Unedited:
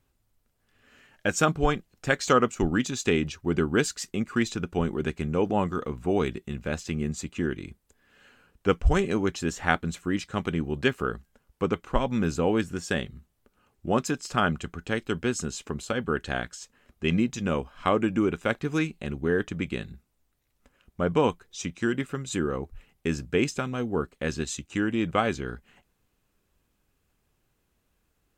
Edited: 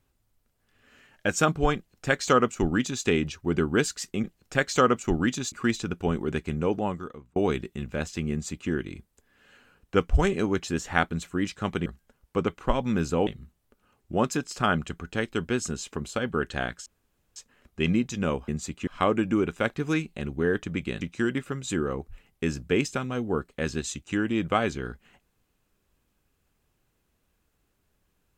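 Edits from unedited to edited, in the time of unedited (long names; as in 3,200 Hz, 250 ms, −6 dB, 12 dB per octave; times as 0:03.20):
0:01.76–0:03.04: duplicate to 0:04.24
0:05.33–0:06.08: fade out
0:07.03–0:07.42: duplicate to 0:17.72
0:10.58–0:11.12: remove
0:12.53–0:13.01: remove
0:16.60: splice in room tone 0.50 s
0:19.86–0:21.64: remove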